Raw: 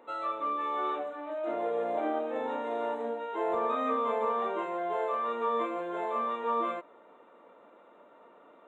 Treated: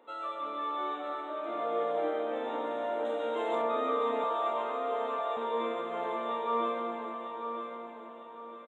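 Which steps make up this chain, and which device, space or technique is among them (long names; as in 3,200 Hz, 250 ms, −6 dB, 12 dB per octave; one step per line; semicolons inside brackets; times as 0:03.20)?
PA in a hall (high-pass filter 140 Hz 12 dB per octave; parametric band 3,400 Hz +8 dB 0.31 octaves; single-tap delay 99 ms −5.5 dB; convolution reverb RT60 3.7 s, pre-delay 115 ms, DRR 3.5 dB)
0:03.05–0:03.62: high-shelf EQ 2,400 Hz +10.5 dB
0:04.24–0:05.37: Butterworth high-pass 460 Hz 36 dB per octave
repeating echo 951 ms, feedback 37%, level −8 dB
level −4.5 dB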